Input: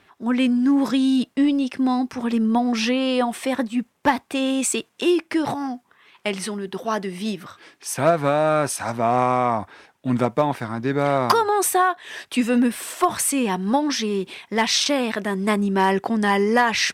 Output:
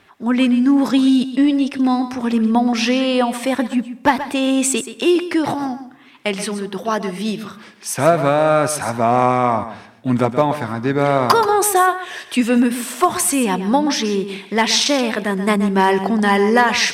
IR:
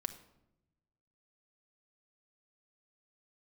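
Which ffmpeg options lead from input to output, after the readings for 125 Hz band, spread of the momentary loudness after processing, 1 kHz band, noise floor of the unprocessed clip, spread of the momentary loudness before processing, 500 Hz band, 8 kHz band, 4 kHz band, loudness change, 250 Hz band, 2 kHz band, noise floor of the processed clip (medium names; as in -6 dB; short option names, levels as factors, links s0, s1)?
+4.5 dB, 9 LU, +4.0 dB, -62 dBFS, 9 LU, +4.5 dB, +4.0 dB, +4.0 dB, +4.5 dB, +4.5 dB, +4.0 dB, -43 dBFS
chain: -filter_complex "[0:a]asplit=2[s0][s1];[1:a]atrim=start_sample=2205,adelay=128[s2];[s1][s2]afir=irnorm=-1:irlink=0,volume=0.282[s3];[s0][s3]amix=inputs=2:normalize=0,volume=1.58"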